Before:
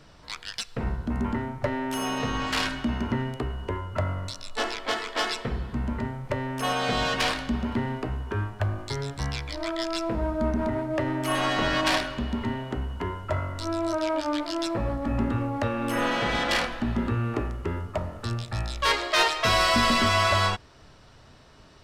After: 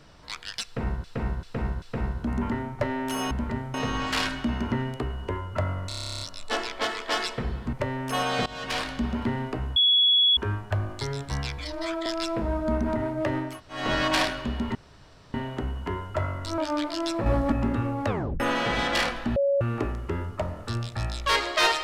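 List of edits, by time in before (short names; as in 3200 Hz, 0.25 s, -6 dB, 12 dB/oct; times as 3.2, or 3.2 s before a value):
0.65–1.04 loop, 4 plays
4.28 stutter 0.03 s, 12 plays
5.8–6.23 move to 2.14
6.96–7.68 fade in equal-power, from -20.5 dB
8.26 add tone 3370 Hz -16.5 dBFS 0.61 s
9.47–9.79 stretch 1.5×
11.22–11.53 room tone, crossfade 0.24 s
12.48 insert room tone 0.59 s
13.72–14.14 cut
14.82–15.08 gain +5.5 dB
15.64 tape stop 0.32 s
16.92–17.17 bleep 559 Hz -19.5 dBFS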